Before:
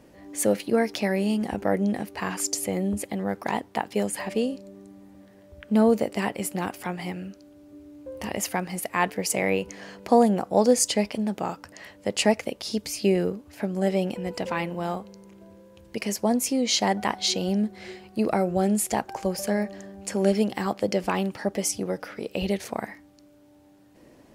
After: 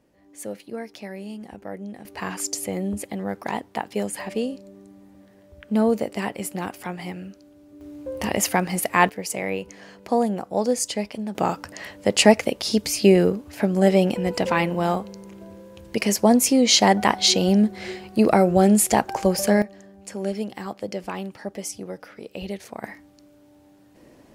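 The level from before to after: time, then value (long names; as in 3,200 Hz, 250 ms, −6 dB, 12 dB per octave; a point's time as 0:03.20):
−11 dB
from 0:02.05 −0.5 dB
from 0:07.81 +6.5 dB
from 0:09.09 −3 dB
from 0:11.35 +7 dB
from 0:19.62 −5.5 dB
from 0:22.84 +2 dB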